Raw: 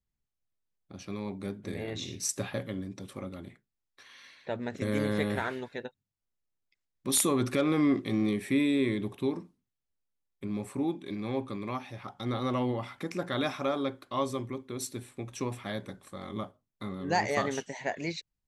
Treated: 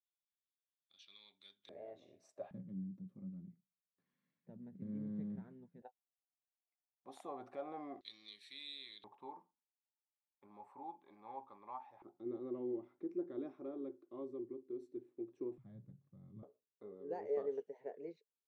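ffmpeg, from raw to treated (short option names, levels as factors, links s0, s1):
-af "asetnsamples=n=441:p=0,asendcmd='1.69 bandpass f 630;2.51 bandpass f 180;5.82 bandpass f 740;8.01 bandpass f 4000;9.04 bandpass f 870;12.02 bandpass f 350;15.58 bandpass f 140;16.43 bandpass f 440',bandpass=f=3500:t=q:w=9:csg=0"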